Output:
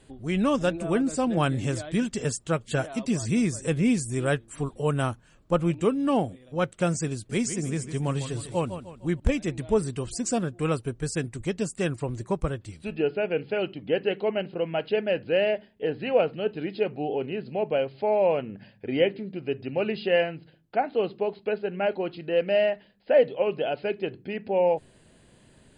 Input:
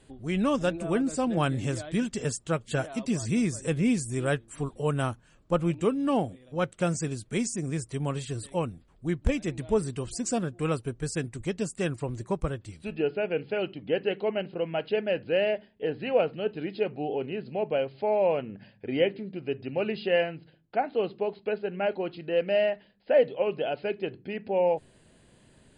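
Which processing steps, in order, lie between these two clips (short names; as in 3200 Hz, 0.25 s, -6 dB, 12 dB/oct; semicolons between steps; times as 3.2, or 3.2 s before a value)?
7.14–9.2 warbling echo 0.152 s, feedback 43%, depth 101 cents, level -10.5 dB; gain +2 dB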